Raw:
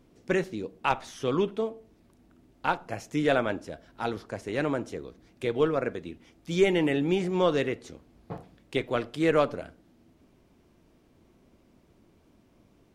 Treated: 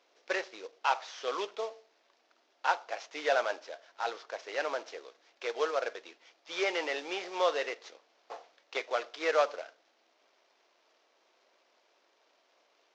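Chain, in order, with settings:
variable-slope delta modulation 32 kbit/s
high-pass filter 540 Hz 24 dB per octave

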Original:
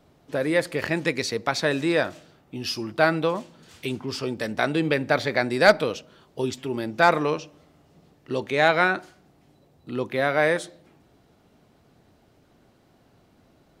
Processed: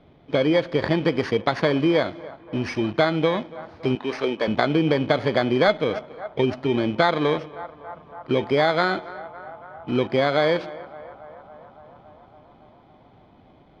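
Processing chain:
samples in bit-reversed order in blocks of 16 samples
0:03.95–0:04.48: high-pass filter 340 Hz 12 dB per octave
in parallel at −8 dB: bit-depth reduction 6 bits, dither none
on the sum: low-pass filter 3,600 Hz 24 dB per octave
on a send: feedback echo with a band-pass in the loop 280 ms, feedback 83%, band-pass 900 Hz, level −22 dB
on the sum: downward compressor 4 to 1, threshold −22 dBFS, peak gain reduction 12 dB
level +5.5 dB

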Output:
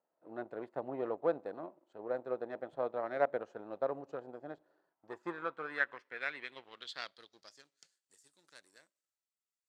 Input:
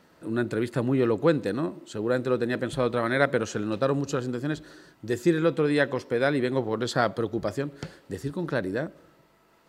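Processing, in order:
power curve on the samples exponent 1.4
band-pass filter sweep 690 Hz → 7,700 Hz, 0:04.74–0:07.99

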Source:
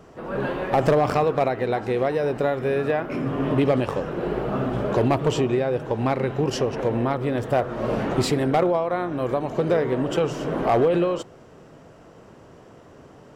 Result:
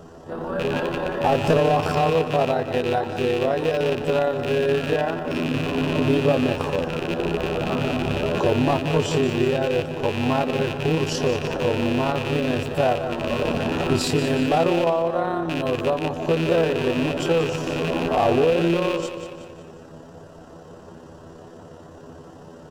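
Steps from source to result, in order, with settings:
loose part that buzzes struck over −31 dBFS, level −16 dBFS
parametric band 2,200 Hz −13.5 dB 0.32 octaves
notch filter 1,200 Hz, Q 15
repeating echo 109 ms, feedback 45%, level −11.5 dB
time stretch by overlap-add 1.7×, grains 59 ms
in parallel at 0 dB: downward compressor, threshold −33 dBFS, peak gain reduction 16 dB

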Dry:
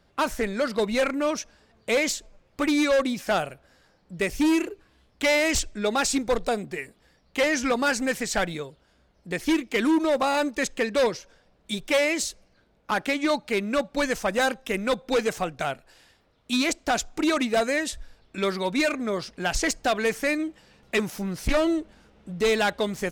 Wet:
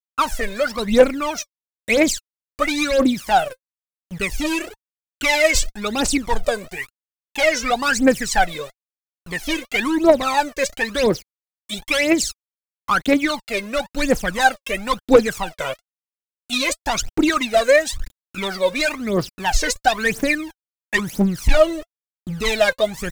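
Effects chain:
centre clipping without the shift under −40 dBFS
phase shifter 0.99 Hz, delay 2 ms, feedback 80%
wow of a warped record 45 rpm, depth 100 cents
level +1.5 dB

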